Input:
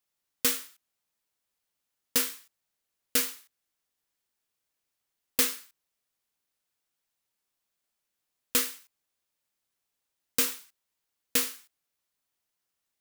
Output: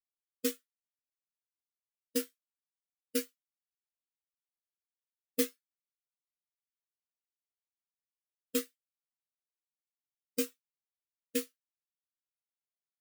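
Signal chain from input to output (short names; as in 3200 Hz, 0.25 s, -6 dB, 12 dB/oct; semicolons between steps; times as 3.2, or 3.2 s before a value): spectral expander 2.5:1; gain -5.5 dB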